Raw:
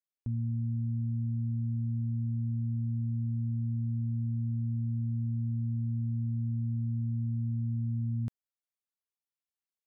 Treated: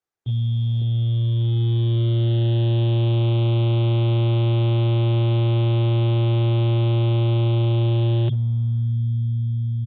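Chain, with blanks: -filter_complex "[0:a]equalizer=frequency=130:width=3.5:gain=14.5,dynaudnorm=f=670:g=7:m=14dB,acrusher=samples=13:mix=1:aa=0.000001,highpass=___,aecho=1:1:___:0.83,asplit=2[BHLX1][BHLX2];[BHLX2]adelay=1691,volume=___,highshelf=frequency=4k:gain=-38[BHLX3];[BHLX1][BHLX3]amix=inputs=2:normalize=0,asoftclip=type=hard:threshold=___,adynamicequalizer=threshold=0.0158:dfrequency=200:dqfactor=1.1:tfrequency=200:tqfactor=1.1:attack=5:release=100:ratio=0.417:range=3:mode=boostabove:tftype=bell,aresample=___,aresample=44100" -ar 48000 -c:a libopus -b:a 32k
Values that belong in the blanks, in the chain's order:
88, 2.5, -13dB, -20dB, 8000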